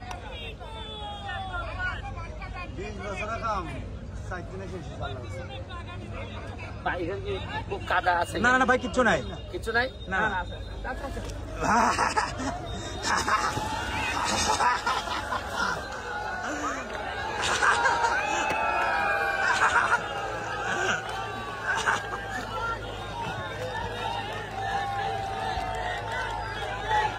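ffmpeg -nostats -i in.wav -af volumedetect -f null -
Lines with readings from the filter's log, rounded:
mean_volume: -28.9 dB
max_volume: -9.8 dB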